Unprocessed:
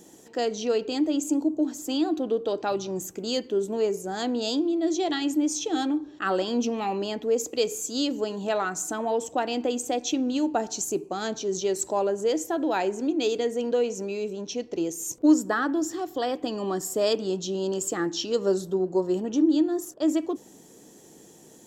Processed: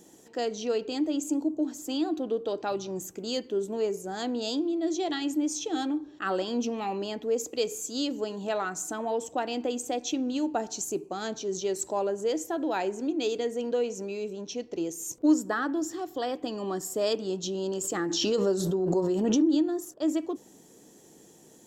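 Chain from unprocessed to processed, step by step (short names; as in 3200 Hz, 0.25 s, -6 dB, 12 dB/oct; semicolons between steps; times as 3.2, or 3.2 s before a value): 17.43–19.78 backwards sustainer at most 26 dB/s; gain -3.5 dB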